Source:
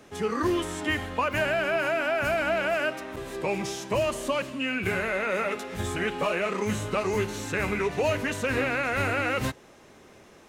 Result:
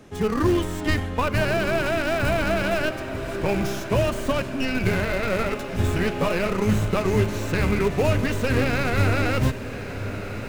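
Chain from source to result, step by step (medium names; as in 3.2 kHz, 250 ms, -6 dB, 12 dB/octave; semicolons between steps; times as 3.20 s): tracing distortion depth 0.078 ms; bass shelf 260 Hz +11 dB; in parallel at -7 dB: Schmitt trigger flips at -20 dBFS; on the sum: echo that smears into a reverb 1204 ms, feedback 64%, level -12 dB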